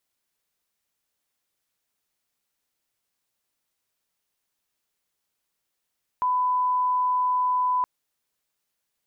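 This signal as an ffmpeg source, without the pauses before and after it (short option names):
-f lavfi -i "sine=f=1000:d=1.62:r=44100,volume=-1.94dB"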